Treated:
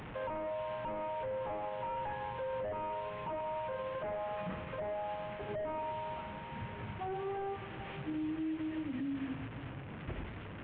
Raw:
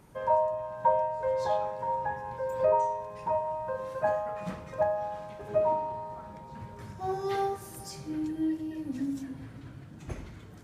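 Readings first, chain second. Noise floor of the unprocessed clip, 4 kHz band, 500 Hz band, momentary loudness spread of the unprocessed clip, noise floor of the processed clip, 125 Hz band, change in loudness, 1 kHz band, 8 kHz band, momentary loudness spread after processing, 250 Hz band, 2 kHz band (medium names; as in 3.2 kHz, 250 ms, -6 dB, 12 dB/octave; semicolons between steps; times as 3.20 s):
-47 dBFS, -1.5 dB, -9.0 dB, 17 LU, -46 dBFS, -2.0 dB, -8.5 dB, -9.0 dB, under -30 dB, 6 LU, -4.0 dB, -2.0 dB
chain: one-bit delta coder 16 kbps, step -40 dBFS; peak limiter -31.5 dBFS, peak gain reduction 10.5 dB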